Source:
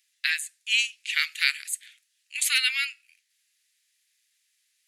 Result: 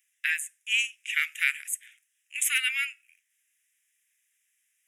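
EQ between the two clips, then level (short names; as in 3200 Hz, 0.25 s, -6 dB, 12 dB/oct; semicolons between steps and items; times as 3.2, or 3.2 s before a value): HPF 1400 Hz 6 dB/oct; fixed phaser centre 1800 Hz, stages 4; notch 4600 Hz, Q 7; +2.0 dB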